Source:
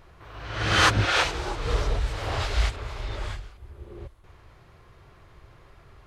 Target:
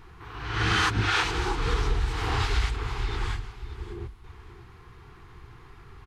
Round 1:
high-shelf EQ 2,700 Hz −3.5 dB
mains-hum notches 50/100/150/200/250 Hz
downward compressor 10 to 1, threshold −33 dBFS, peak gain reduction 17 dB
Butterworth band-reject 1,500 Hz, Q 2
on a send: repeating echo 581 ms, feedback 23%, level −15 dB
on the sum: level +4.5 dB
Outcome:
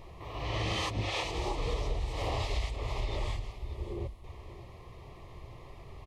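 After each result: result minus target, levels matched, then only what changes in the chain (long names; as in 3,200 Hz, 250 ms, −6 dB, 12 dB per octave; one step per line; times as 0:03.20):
downward compressor: peak gain reduction +7.5 dB; 500 Hz band +6.0 dB
change: downward compressor 10 to 1, threshold −24.5 dBFS, peak gain reduction 9.5 dB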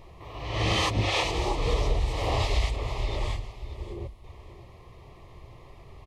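500 Hz band +5.0 dB
change: Butterworth band-reject 590 Hz, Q 2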